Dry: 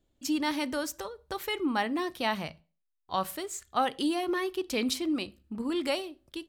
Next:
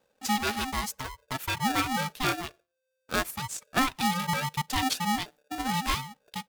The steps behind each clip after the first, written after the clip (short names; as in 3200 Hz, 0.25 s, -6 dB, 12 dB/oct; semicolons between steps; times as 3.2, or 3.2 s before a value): reverb removal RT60 0.66 s; polarity switched at an audio rate 520 Hz; gain +2 dB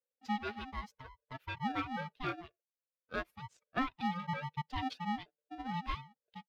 per-bin expansion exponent 1.5; air absorption 310 m; gain -5.5 dB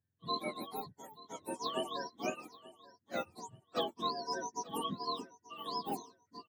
spectrum mirrored in octaves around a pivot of 930 Hz; feedback echo 0.883 s, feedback 25%, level -19 dB; gain +2.5 dB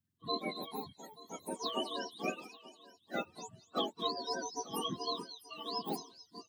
bin magnitudes rounded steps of 30 dB; delay with a stepping band-pass 0.217 s, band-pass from 4000 Hz, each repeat 0.7 oct, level -10 dB; gain +1 dB